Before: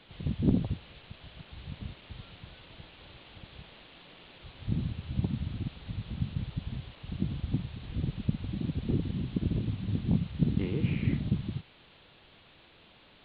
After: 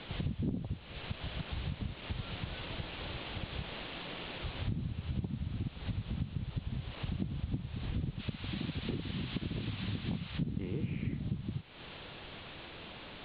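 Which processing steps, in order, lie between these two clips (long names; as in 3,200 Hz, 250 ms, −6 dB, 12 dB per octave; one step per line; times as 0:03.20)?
0:08.19–0:10.38: tilt shelving filter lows −8 dB, about 690 Hz
downward compressor 6 to 1, threshold −45 dBFS, peak gain reduction 23.5 dB
high-frequency loss of the air 86 metres
level +11 dB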